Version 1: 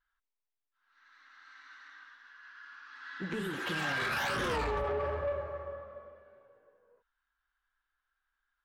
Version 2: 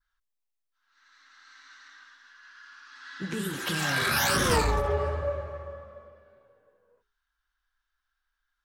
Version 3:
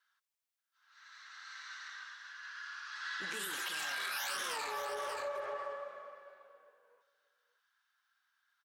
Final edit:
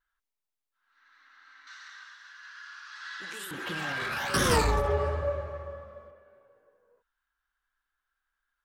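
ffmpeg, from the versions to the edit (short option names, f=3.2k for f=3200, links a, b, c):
-filter_complex "[0:a]asplit=3[a][b][c];[a]atrim=end=1.672[d];[2:a]atrim=start=1.668:end=3.512[e];[b]atrim=start=3.508:end=4.342[f];[1:a]atrim=start=4.338:end=6.112[g];[c]atrim=start=6.108[h];[d][e]acrossfade=d=0.004:c1=hsin:c2=hsin[i];[i][f]acrossfade=d=0.004:c1=hsin:c2=hsin[j];[j][g]acrossfade=d=0.004:c1=hsin:c2=hsin[k];[k][h]acrossfade=d=0.004:c1=hsin:c2=hsin"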